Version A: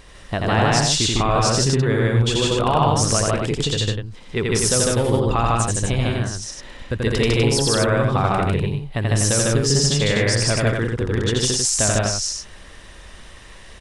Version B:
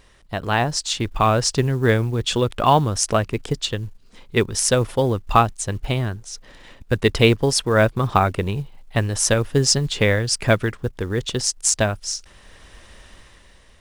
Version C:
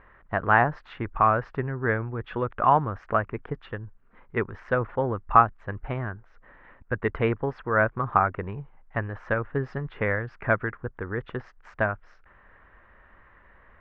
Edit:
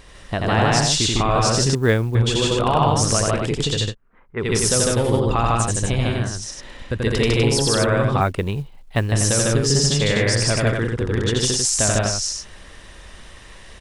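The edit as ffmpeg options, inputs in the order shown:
-filter_complex "[1:a]asplit=2[a][b];[0:a]asplit=4[c][d][e][f];[c]atrim=end=1.752[g];[a]atrim=start=1.748:end=2.152[h];[d]atrim=start=2.148:end=3.95[i];[2:a]atrim=start=3.85:end=4.47[j];[e]atrim=start=4.37:end=8.212[k];[b]atrim=start=8.208:end=9.122[l];[f]atrim=start=9.118[m];[g][h]acrossfade=d=0.004:c1=hsin:c2=hsin[n];[n][i]acrossfade=d=0.004:c1=hsin:c2=hsin[o];[o][j]acrossfade=d=0.1:c1=tri:c2=tri[p];[p][k]acrossfade=d=0.1:c1=tri:c2=tri[q];[q][l]acrossfade=d=0.004:c1=hsin:c2=hsin[r];[r][m]acrossfade=d=0.004:c1=hsin:c2=hsin"

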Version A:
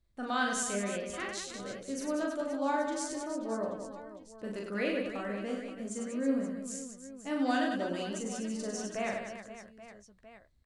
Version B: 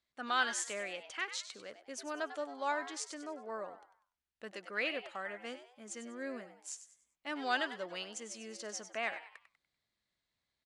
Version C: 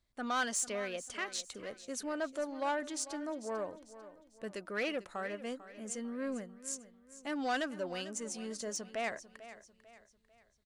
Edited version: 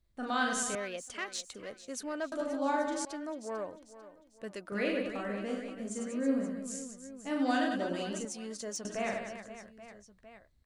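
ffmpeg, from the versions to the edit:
-filter_complex "[2:a]asplit=3[a][b][c];[0:a]asplit=4[d][e][f][g];[d]atrim=end=0.752[h];[a]atrim=start=0.748:end=2.322[i];[e]atrim=start=2.318:end=3.052[j];[b]atrim=start=3.048:end=4.722[k];[f]atrim=start=4.718:end=8.252[l];[c]atrim=start=8.248:end=8.852[m];[g]atrim=start=8.848[n];[h][i]acrossfade=d=0.004:c1=hsin:c2=hsin[o];[o][j]acrossfade=d=0.004:c1=hsin:c2=hsin[p];[p][k]acrossfade=d=0.004:c1=hsin:c2=hsin[q];[q][l]acrossfade=d=0.004:c1=hsin:c2=hsin[r];[r][m]acrossfade=d=0.004:c1=hsin:c2=hsin[s];[s][n]acrossfade=d=0.004:c1=hsin:c2=hsin"

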